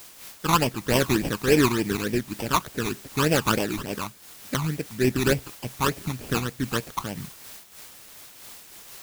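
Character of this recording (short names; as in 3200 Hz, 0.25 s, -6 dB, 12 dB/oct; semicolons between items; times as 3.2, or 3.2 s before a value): aliases and images of a low sample rate 2100 Hz, jitter 20%; phasing stages 12, 3.4 Hz, lowest notch 510–1300 Hz; a quantiser's noise floor 8-bit, dither triangular; noise-modulated level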